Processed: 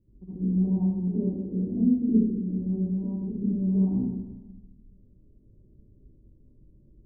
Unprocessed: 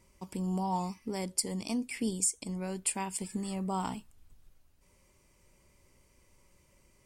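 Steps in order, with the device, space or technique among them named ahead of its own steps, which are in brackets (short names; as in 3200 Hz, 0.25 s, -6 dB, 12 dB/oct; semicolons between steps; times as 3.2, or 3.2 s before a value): next room (LPF 350 Hz 24 dB/oct; reverb RT60 1.2 s, pre-delay 54 ms, DRR -12 dB); gain -1.5 dB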